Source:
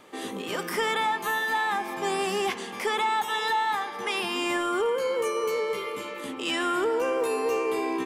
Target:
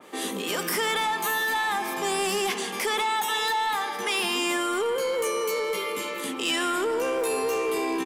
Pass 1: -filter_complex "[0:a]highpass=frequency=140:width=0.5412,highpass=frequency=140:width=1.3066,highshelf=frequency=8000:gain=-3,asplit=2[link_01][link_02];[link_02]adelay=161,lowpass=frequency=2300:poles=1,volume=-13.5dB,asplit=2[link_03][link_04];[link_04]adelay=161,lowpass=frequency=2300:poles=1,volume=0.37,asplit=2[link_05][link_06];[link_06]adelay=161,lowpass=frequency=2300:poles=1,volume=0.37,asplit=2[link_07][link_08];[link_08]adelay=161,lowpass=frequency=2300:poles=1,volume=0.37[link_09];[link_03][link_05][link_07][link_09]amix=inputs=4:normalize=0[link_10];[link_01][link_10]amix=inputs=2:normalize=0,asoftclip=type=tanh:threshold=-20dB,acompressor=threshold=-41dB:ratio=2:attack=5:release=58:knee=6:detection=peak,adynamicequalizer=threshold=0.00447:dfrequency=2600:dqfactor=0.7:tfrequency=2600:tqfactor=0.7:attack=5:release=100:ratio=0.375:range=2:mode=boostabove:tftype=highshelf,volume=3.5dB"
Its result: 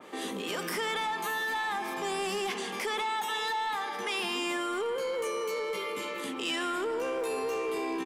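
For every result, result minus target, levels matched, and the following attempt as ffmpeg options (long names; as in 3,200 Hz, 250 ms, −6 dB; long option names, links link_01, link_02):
downward compressor: peak gain reduction +5.5 dB; 8,000 Hz band −4.0 dB
-filter_complex "[0:a]highpass=frequency=140:width=0.5412,highpass=frequency=140:width=1.3066,highshelf=frequency=8000:gain=-3,asplit=2[link_01][link_02];[link_02]adelay=161,lowpass=frequency=2300:poles=1,volume=-13.5dB,asplit=2[link_03][link_04];[link_04]adelay=161,lowpass=frequency=2300:poles=1,volume=0.37,asplit=2[link_05][link_06];[link_06]adelay=161,lowpass=frequency=2300:poles=1,volume=0.37,asplit=2[link_07][link_08];[link_08]adelay=161,lowpass=frequency=2300:poles=1,volume=0.37[link_09];[link_03][link_05][link_07][link_09]amix=inputs=4:normalize=0[link_10];[link_01][link_10]amix=inputs=2:normalize=0,asoftclip=type=tanh:threshold=-20dB,acompressor=threshold=-29.5dB:ratio=2:attack=5:release=58:knee=6:detection=peak,adynamicequalizer=threshold=0.00447:dfrequency=2600:dqfactor=0.7:tfrequency=2600:tqfactor=0.7:attack=5:release=100:ratio=0.375:range=2:mode=boostabove:tftype=highshelf,volume=3.5dB"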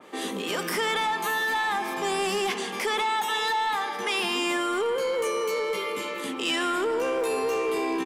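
8,000 Hz band −4.0 dB
-filter_complex "[0:a]highpass=frequency=140:width=0.5412,highpass=frequency=140:width=1.3066,highshelf=frequency=8000:gain=7,asplit=2[link_01][link_02];[link_02]adelay=161,lowpass=frequency=2300:poles=1,volume=-13.5dB,asplit=2[link_03][link_04];[link_04]adelay=161,lowpass=frequency=2300:poles=1,volume=0.37,asplit=2[link_05][link_06];[link_06]adelay=161,lowpass=frequency=2300:poles=1,volume=0.37,asplit=2[link_07][link_08];[link_08]adelay=161,lowpass=frequency=2300:poles=1,volume=0.37[link_09];[link_03][link_05][link_07][link_09]amix=inputs=4:normalize=0[link_10];[link_01][link_10]amix=inputs=2:normalize=0,asoftclip=type=tanh:threshold=-20dB,acompressor=threshold=-29.5dB:ratio=2:attack=5:release=58:knee=6:detection=peak,adynamicequalizer=threshold=0.00447:dfrequency=2600:dqfactor=0.7:tfrequency=2600:tqfactor=0.7:attack=5:release=100:ratio=0.375:range=2:mode=boostabove:tftype=highshelf,volume=3.5dB"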